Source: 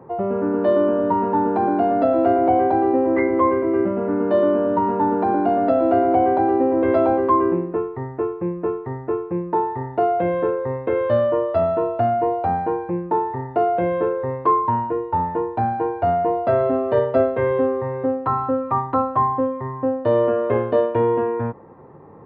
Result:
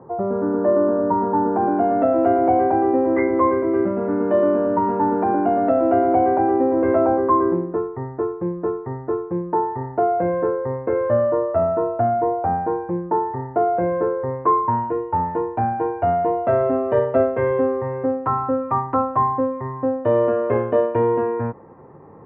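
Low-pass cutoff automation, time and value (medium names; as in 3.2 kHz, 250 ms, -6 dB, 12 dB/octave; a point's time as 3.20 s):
low-pass 24 dB/octave
1.51 s 1.6 kHz
2.04 s 2.4 kHz
6.43 s 2.4 kHz
7.20 s 1.8 kHz
14.28 s 1.8 kHz
14.93 s 2.6 kHz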